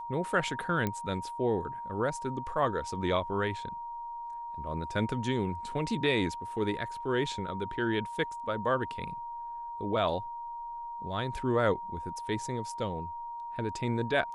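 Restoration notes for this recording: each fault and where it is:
whistle 940 Hz −37 dBFS
0:00.87: click −17 dBFS

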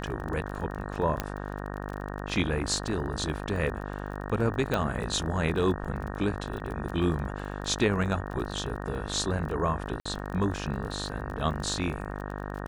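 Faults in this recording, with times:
mains buzz 50 Hz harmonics 37 −36 dBFS
surface crackle 28 per second −35 dBFS
0:01.20: click −13 dBFS
0:04.74: click −14 dBFS
0:06.60: drop-out 2.5 ms
0:10.00–0:10.05: drop-out 55 ms

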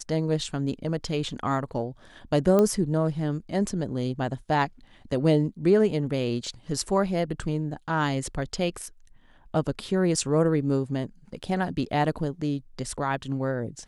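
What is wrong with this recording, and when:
0:02.59: click −11 dBFS

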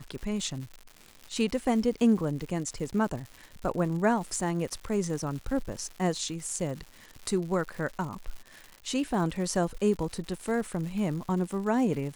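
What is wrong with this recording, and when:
surface crackle 200 per second −37 dBFS

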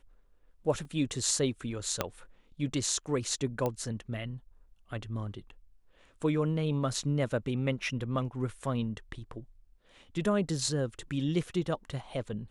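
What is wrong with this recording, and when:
0:00.85: drop-out 2.5 ms
0:02.01: click −12 dBFS
0:03.66: click −18 dBFS

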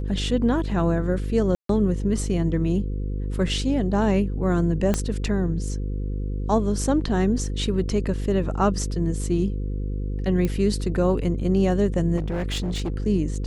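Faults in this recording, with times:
mains buzz 50 Hz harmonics 10 −27 dBFS
0:01.55–0:01.69: drop-out 143 ms
0:04.94: click −9 dBFS
0:10.45: click −13 dBFS
0:12.16–0:12.98: clipping −22.5 dBFS

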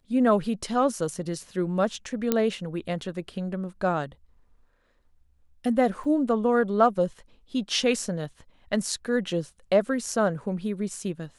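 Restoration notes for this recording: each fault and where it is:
0:02.32: click −8 dBFS
0:06.04: drop-out 4.5 ms

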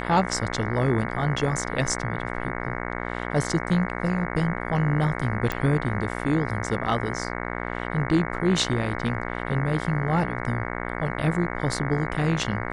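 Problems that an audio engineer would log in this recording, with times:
mains buzz 60 Hz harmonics 37 −31 dBFS
0:05.52: click −13 dBFS

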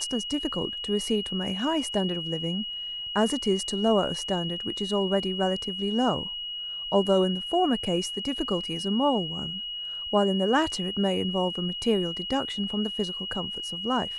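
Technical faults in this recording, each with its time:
whistle 2,900 Hz −32 dBFS

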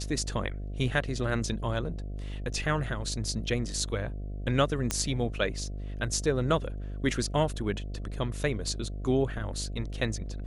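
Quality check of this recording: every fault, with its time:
mains buzz 50 Hz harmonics 14 −36 dBFS
0:04.91: click −11 dBFS

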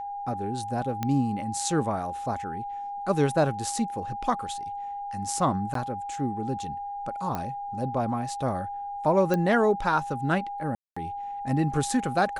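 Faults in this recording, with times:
whistle 810 Hz −32 dBFS
0:01.03: click −14 dBFS
0:05.74–0:05.75: drop-out 13 ms
0:07.35: click −17 dBFS
0:09.34: click −14 dBFS
0:10.75–0:10.96: drop-out 215 ms

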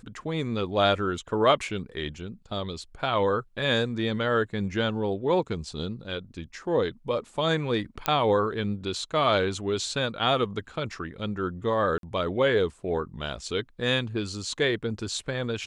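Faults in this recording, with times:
0:08.06: click −8 dBFS
0:11.98–0:12.03: drop-out 52 ms

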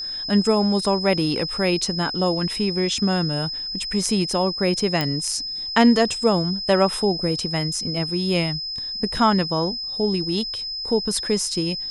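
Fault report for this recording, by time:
whistle 5,100 Hz −27 dBFS
0:05.01: click −9 dBFS

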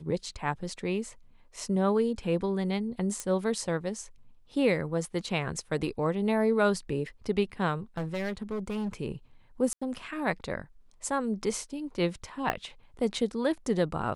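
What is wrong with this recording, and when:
0:03.20: click −19 dBFS
0:07.97–0:09.00: clipping −28.5 dBFS
0:09.73–0:09.81: drop-out 85 ms
0:12.50: click −14 dBFS

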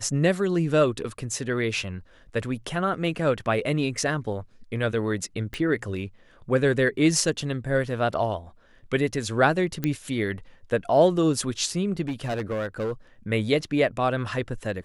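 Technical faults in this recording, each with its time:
0:05.54: click −18 dBFS
0:09.84: click −12 dBFS
0:12.01–0:12.92: clipping −24 dBFS

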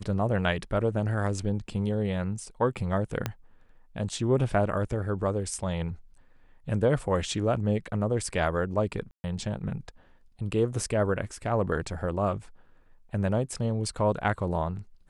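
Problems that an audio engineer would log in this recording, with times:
0:03.26: click −13 dBFS
0:09.11–0:09.24: drop-out 130 ms

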